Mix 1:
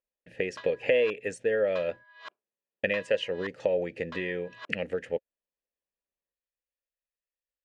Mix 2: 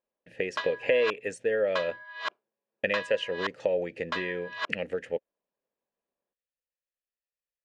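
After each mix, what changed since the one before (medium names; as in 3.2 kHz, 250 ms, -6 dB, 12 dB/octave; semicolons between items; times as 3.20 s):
background +12.0 dB; master: add bass shelf 150 Hz -5 dB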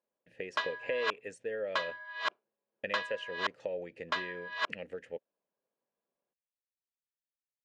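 speech -10.0 dB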